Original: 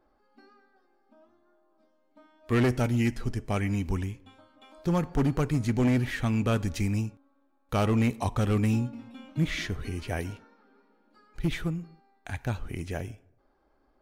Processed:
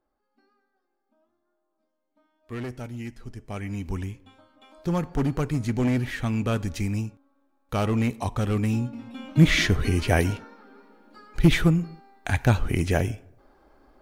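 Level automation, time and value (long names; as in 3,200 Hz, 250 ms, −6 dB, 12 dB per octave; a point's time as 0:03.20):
0:03.18 −10 dB
0:04.08 +0.5 dB
0:08.74 +0.5 dB
0:09.45 +11 dB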